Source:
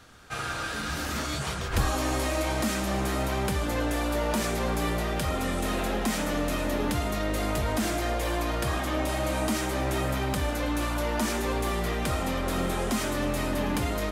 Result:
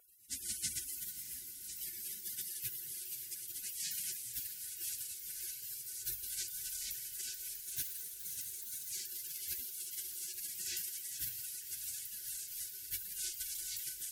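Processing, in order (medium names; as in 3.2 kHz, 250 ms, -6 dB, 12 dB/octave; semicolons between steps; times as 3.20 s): 7.63–8.89 s: comb filter that takes the minimum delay 0.38 ms; FFT band-reject 350–1500 Hz; frequency weighting A; spectral gate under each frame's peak -30 dB weak; echo that smears into a reverb 583 ms, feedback 71%, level -11 dB; trim +14.5 dB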